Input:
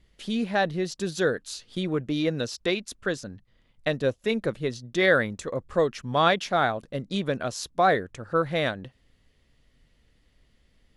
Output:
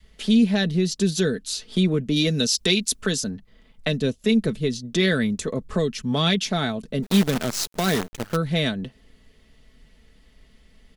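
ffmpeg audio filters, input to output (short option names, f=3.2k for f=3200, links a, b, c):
-filter_complex "[0:a]asettb=1/sr,asplit=3[a][b][c];[a]atrim=end=2.164[d];[b]atrim=start=2.16:end=3.3,asetpts=PTS-STARTPTS,afade=t=in:d=0.004:c=qsin,afade=t=out:st=1.136:d=0.004:c=qsin,highshelf=f=3.6k:g=9.5[e];[c]atrim=start=3.296[f];[d][e]acrossfade=d=0.004:c1=hsin:c2=qsin[g];[g][f]acrossfade=d=0.004:c1=qsin:c2=hsin,aecho=1:1:4.6:0.51,adynamicequalizer=threshold=0.0141:dfrequency=350:dqfactor=0.83:tfrequency=350:tqfactor=0.83:attack=5:release=100:ratio=0.375:range=3:mode=boostabove:tftype=bell,acrossover=split=240|2600[h][i][j];[i]acompressor=threshold=-36dB:ratio=6[k];[h][k][j]amix=inputs=3:normalize=0,asplit=3[l][m][n];[l]afade=t=out:st=7.02:d=0.02[o];[m]acrusher=bits=6:dc=4:mix=0:aa=0.000001,afade=t=in:st=7.02:d=0.02,afade=t=out:st=8.35:d=0.02[p];[n]afade=t=in:st=8.35:d=0.02[q];[o][p][q]amix=inputs=3:normalize=0,volume=7.5dB"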